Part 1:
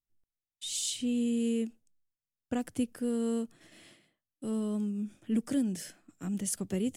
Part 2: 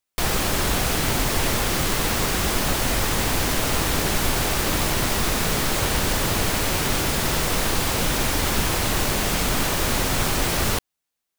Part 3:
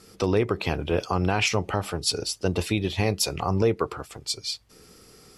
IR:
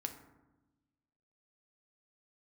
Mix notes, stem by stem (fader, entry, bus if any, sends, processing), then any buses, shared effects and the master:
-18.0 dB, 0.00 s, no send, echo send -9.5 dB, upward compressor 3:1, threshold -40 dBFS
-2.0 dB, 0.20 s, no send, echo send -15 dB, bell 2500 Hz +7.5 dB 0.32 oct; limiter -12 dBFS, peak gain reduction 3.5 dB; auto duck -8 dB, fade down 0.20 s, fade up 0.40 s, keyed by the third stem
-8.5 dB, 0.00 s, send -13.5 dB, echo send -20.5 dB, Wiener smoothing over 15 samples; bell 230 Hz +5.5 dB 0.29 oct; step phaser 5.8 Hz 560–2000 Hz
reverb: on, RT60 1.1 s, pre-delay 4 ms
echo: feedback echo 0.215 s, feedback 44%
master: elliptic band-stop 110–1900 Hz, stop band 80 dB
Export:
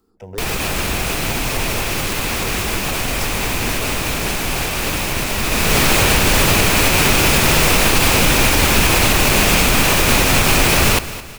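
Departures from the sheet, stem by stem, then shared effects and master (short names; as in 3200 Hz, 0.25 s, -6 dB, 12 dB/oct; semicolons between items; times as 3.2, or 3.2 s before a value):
stem 2 -2.0 dB -> +9.0 dB; master: missing elliptic band-stop 110–1900 Hz, stop band 80 dB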